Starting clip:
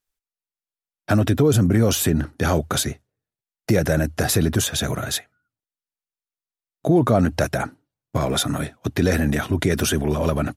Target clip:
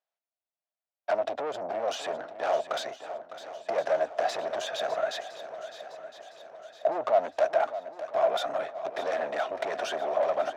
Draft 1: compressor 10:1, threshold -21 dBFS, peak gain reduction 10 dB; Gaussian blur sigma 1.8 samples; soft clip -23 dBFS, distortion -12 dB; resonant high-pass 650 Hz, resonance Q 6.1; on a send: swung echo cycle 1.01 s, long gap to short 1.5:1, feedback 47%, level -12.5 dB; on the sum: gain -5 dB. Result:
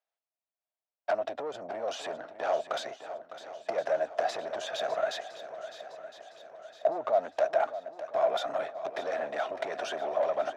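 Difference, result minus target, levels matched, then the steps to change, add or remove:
compressor: peak gain reduction +6.5 dB
change: compressor 10:1, threshold -14 dBFS, peak gain reduction 3.5 dB

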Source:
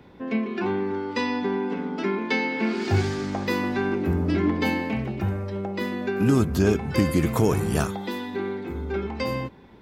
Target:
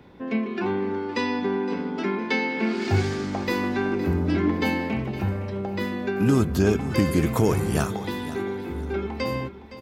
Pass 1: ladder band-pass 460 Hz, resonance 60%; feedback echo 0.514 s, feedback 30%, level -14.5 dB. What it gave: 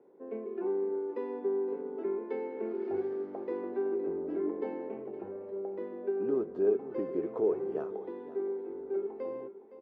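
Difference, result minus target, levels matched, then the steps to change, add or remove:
500 Hz band +5.5 dB
remove: ladder band-pass 460 Hz, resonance 60%

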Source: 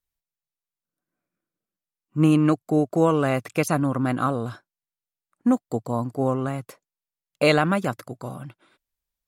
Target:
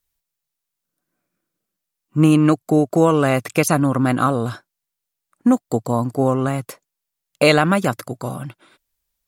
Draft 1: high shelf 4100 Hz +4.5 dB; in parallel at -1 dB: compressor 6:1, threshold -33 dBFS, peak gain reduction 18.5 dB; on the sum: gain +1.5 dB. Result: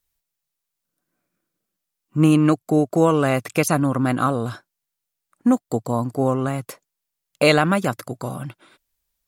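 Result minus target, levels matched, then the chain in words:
compressor: peak gain reduction +9.5 dB
high shelf 4100 Hz +4.5 dB; in parallel at -1 dB: compressor 6:1, threshold -21.5 dBFS, peak gain reduction 9 dB; on the sum: gain +1.5 dB

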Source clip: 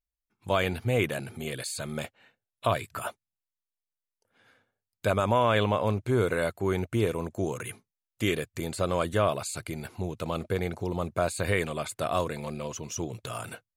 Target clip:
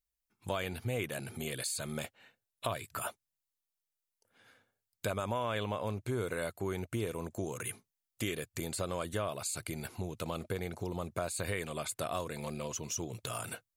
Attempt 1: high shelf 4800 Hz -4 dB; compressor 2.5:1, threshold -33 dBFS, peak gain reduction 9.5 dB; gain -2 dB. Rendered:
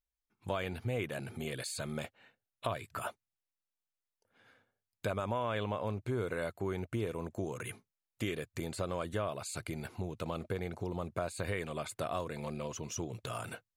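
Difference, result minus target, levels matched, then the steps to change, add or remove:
8000 Hz band -5.5 dB
change: high shelf 4800 Hz +7.5 dB

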